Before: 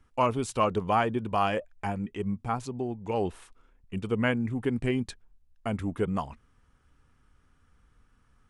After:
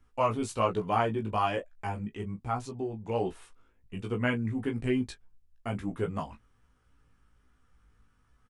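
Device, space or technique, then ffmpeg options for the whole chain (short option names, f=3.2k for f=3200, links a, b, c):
double-tracked vocal: -filter_complex "[0:a]asplit=2[a][b];[b]adelay=19,volume=-9dB[c];[a][c]amix=inputs=2:normalize=0,flanger=delay=16:depth=2.6:speed=1.2"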